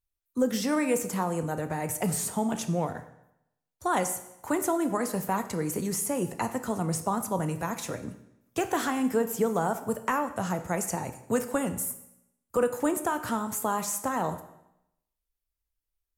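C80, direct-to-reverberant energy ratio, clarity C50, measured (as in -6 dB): 14.0 dB, 8.5 dB, 12.0 dB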